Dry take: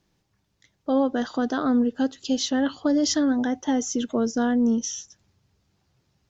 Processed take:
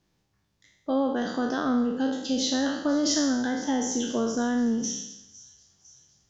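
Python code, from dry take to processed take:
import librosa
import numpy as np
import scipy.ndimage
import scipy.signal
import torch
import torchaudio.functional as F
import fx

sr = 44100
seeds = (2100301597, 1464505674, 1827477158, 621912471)

y = fx.spec_trails(x, sr, decay_s=0.86)
y = fx.echo_wet_highpass(y, sr, ms=505, feedback_pct=60, hz=4900.0, wet_db=-15.5)
y = F.gain(torch.from_numpy(y), -4.0).numpy()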